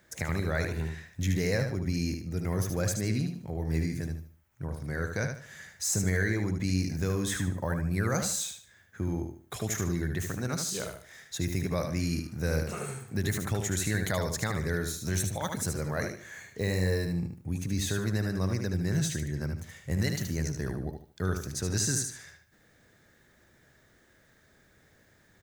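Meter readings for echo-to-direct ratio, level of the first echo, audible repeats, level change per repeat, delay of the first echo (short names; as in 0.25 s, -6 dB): -5.5 dB, -6.0 dB, 3, -10.5 dB, 75 ms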